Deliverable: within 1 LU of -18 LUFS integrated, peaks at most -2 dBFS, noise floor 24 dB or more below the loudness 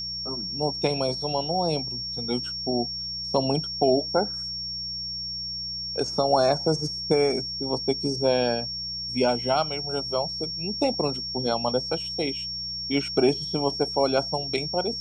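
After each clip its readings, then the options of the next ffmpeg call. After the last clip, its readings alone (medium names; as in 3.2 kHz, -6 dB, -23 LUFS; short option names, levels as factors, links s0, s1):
hum 60 Hz; highest harmonic 180 Hz; hum level -43 dBFS; steady tone 5.5 kHz; tone level -30 dBFS; loudness -25.5 LUFS; peak level -8.5 dBFS; loudness target -18.0 LUFS
-> -af "bandreject=f=60:t=h:w=4,bandreject=f=120:t=h:w=4,bandreject=f=180:t=h:w=4"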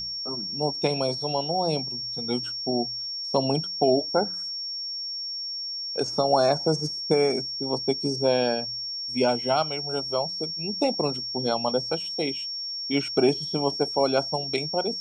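hum not found; steady tone 5.5 kHz; tone level -30 dBFS
-> -af "bandreject=f=5500:w=30"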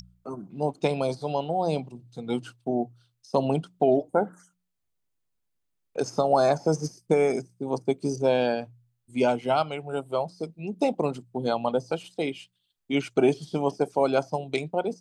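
steady tone not found; loudness -27.0 LUFS; peak level -9.0 dBFS; loudness target -18.0 LUFS
-> -af "volume=2.82,alimiter=limit=0.794:level=0:latency=1"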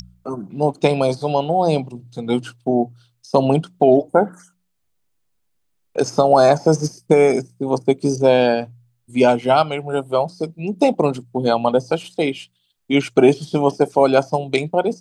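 loudness -18.0 LUFS; peak level -2.0 dBFS; noise floor -68 dBFS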